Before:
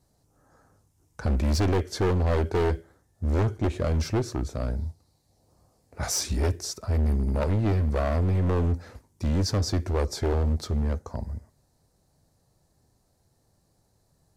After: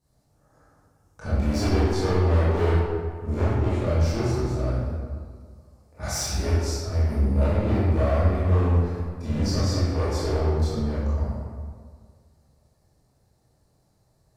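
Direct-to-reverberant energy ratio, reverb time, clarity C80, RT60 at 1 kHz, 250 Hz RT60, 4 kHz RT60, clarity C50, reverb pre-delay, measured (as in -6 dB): -11.0 dB, 1.8 s, -0.5 dB, 1.8 s, 1.9 s, 1.1 s, -3.5 dB, 18 ms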